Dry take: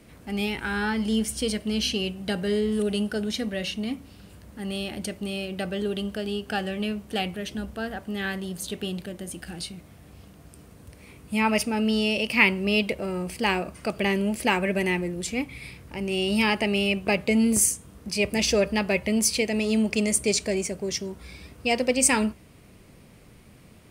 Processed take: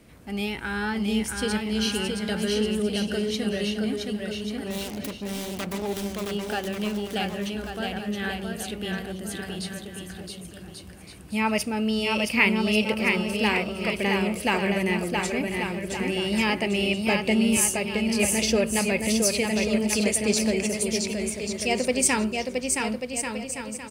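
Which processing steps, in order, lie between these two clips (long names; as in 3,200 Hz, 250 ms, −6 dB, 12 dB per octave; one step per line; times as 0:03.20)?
0:04.66–0:06.31: phase distortion by the signal itself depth 0.63 ms
bouncing-ball delay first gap 670 ms, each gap 0.7×, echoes 5
level −1.5 dB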